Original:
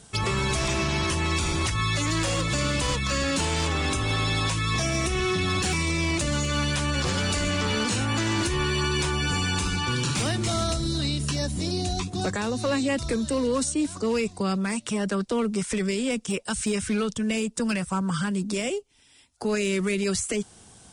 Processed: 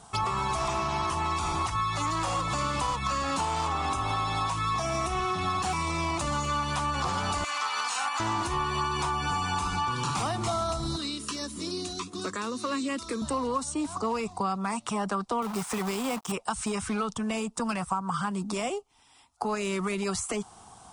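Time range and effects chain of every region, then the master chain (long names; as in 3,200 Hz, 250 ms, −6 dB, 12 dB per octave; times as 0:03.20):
0:07.44–0:08.20: high-pass filter 1,200 Hz + comb filter 3.9 ms, depth 36% + transient designer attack −3 dB, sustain +12 dB
0:10.96–0:13.22: high-pass filter 130 Hz + phaser with its sweep stopped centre 320 Hz, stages 4
0:15.42–0:16.32: high-pass filter 82 Hz + log-companded quantiser 4 bits
whole clip: flat-topped bell 950 Hz +13.5 dB 1.1 octaves; downward compressor, threshold −22 dBFS; level −3.5 dB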